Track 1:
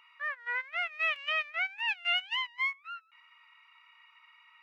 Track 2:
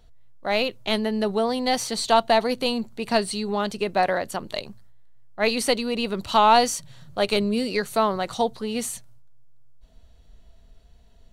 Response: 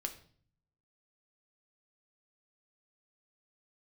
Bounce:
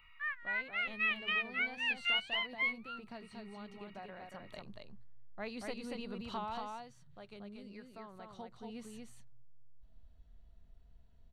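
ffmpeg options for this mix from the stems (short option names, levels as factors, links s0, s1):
-filter_complex "[0:a]highpass=1100,equalizer=f=6200:w=1.6:g=-14,volume=0.944[s0];[1:a]lowpass=f=1200:p=1,acompressor=threshold=0.02:ratio=2,volume=1.06,afade=t=in:st=4.22:d=0.61:silence=0.446684,afade=t=out:st=6.33:d=0.39:silence=0.334965,afade=t=in:st=8.12:d=0.62:silence=0.446684,asplit=2[s1][s2];[s2]volume=0.668,aecho=0:1:233:1[s3];[s0][s1][s3]amix=inputs=3:normalize=0,equalizer=f=480:t=o:w=2:g=-7"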